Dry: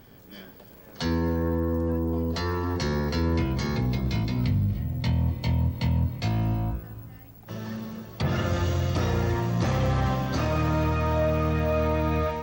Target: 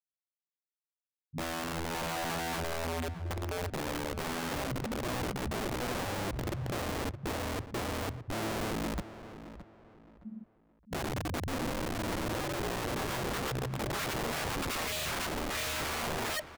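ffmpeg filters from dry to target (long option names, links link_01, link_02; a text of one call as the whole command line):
ffmpeg -i in.wav -filter_complex "[0:a]afftdn=noise_reduction=26:noise_floor=-46,acrossover=split=2800[link_01][link_02];[link_02]acompressor=threshold=-48dB:ratio=4:attack=1:release=60[link_03];[link_01][link_03]amix=inputs=2:normalize=0,afftfilt=real='re*gte(hypot(re,im),0.251)':imag='im*gte(hypot(re,im),0.251)':win_size=1024:overlap=0.75,tiltshelf=frequency=1300:gain=-6,acrossover=split=340|1900|5300[link_04][link_05][link_06][link_07];[link_07]dynaudnorm=framelen=150:gausssize=7:maxgain=13.5dB[link_08];[link_04][link_05][link_06][link_08]amix=inputs=4:normalize=0,asoftclip=type=hard:threshold=-27.5dB,atempo=0.75,aeval=exprs='(mod(39.8*val(0)+1,2)-1)/39.8':channel_layout=same,asplit=2[link_09][link_10];[link_10]adelay=617,lowpass=frequency=2300:poles=1,volume=-12.5dB,asplit=2[link_11][link_12];[link_12]adelay=617,lowpass=frequency=2300:poles=1,volume=0.32,asplit=2[link_13][link_14];[link_14]adelay=617,lowpass=frequency=2300:poles=1,volume=0.32[link_15];[link_09][link_11][link_13][link_15]amix=inputs=4:normalize=0,volume=2dB" out.wav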